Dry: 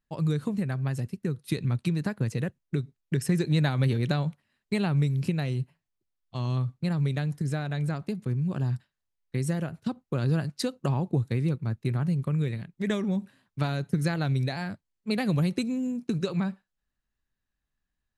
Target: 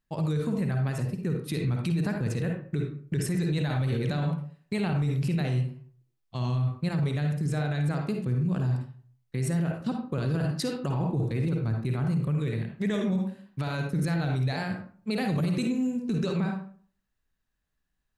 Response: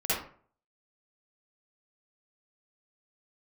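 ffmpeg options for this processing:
-filter_complex "[0:a]asplit=2[a][b];[1:a]atrim=start_sample=2205[c];[b][c]afir=irnorm=-1:irlink=0,volume=-11.5dB[d];[a][d]amix=inputs=2:normalize=0,alimiter=limit=-20.5dB:level=0:latency=1:release=15"

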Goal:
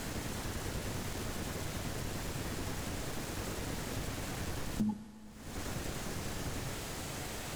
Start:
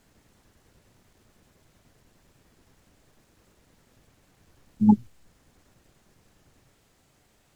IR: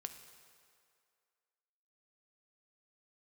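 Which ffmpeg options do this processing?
-filter_complex "[0:a]acompressor=threshold=-56dB:ratio=16,asplit=2[a][b];[1:a]atrim=start_sample=2205,asetrate=26901,aresample=44100[c];[b][c]afir=irnorm=-1:irlink=0,volume=2dB[d];[a][d]amix=inputs=2:normalize=0,volume=17dB"

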